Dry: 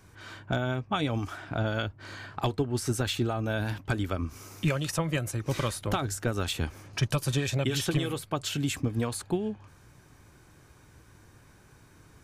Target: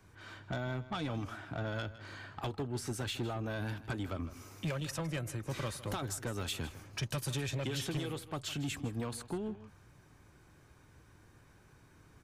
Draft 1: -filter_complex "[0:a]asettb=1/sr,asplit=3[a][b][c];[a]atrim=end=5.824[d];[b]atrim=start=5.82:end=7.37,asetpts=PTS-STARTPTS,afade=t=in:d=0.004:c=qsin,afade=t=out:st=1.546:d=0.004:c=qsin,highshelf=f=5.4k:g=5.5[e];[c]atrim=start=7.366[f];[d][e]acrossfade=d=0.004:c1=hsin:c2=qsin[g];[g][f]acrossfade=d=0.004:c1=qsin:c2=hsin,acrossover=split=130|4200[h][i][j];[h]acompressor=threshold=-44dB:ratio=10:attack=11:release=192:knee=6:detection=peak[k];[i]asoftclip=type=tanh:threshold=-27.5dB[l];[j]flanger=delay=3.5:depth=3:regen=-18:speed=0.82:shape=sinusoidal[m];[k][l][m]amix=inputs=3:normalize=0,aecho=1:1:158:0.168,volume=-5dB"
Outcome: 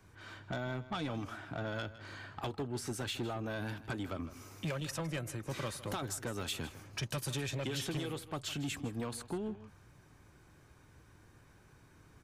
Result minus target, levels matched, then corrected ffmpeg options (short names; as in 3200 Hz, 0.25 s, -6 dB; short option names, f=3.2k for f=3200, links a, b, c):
compressor: peak gain reduction +7 dB
-filter_complex "[0:a]asettb=1/sr,asplit=3[a][b][c];[a]atrim=end=5.824[d];[b]atrim=start=5.82:end=7.37,asetpts=PTS-STARTPTS,afade=t=in:d=0.004:c=qsin,afade=t=out:st=1.546:d=0.004:c=qsin,highshelf=f=5.4k:g=5.5[e];[c]atrim=start=7.366[f];[d][e]acrossfade=d=0.004:c1=hsin:c2=qsin[g];[g][f]acrossfade=d=0.004:c1=qsin:c2=hsin,acrossover=split=130|4200[h][i][j];[h]acompressor=threshold=-36dB:ratio=10:attack=11:release=192:knee=6:detection=peak[k];[i]asoftclip=type=tanh:threshold=-27.5dB[l];[j]flanger=delay=3.5:depth=3:regen=-18:speed=0.82:shape=sinusoidal[m];[k][l][m]amix=inputs=3:normalize=0,aecho=1:1:158:0.168,volume=-5dB"